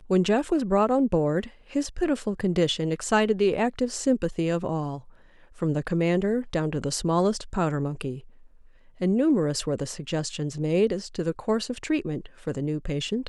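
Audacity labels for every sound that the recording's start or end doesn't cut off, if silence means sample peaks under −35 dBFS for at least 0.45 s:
5.620000	8.180000	sound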